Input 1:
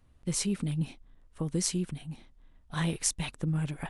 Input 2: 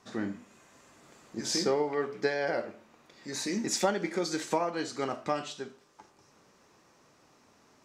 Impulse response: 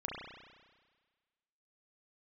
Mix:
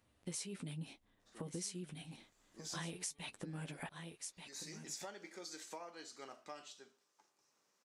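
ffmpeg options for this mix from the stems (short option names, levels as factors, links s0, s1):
-filter_complex "[0:a]flanger=delay=9.7:depth=2.1:regen=-31:speed=0.89:shape=sinusoidal,equalizer=f=1200:w=1.5:g=-3.5,volume=1.41,asplit=3[s0][s1][s2];[s1]volume=0.178[s3];[1:a]highshelf=f=3700:g=9.5,adelay=1200,volume=0.126[s4];[s2]apad=whole_len=398806[s5];[s4][s5]sidechaincompress=threshold=0.00891:ratio=8:attack=8.8:release=699[s6];[s3]aecho=0:1:1185:1[s7];[s0][s6][s7]amix=inputs=3:normalize=0,highpass=f=400:p=1,acompressor=threshold=0.00794:ratio=5"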